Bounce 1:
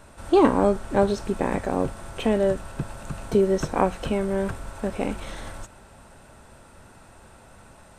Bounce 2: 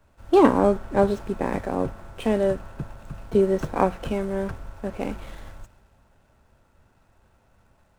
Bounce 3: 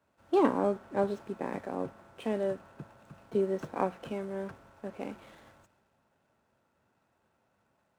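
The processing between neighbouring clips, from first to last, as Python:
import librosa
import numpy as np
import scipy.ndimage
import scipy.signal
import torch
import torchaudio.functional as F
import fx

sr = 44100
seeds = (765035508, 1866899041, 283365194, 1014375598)

y1 = scipy.signal.medfilt(x, 9)
y1 = fx.band_widen(y1, sr, depth_pct=40)
y1 = y1 * librosa.db_to_amplitude(-1.0)
y2 = scipy.signal.sosfilt(scipy.signal.butter(2, 160.0, 'highpass', fs=sr, output='sos'), y1)
y2 = fx.high_shelf(y2, sr, hz=5800.0, db=-4.0)
y2 = y2 * librosa.db_to_amplitude(-9.0)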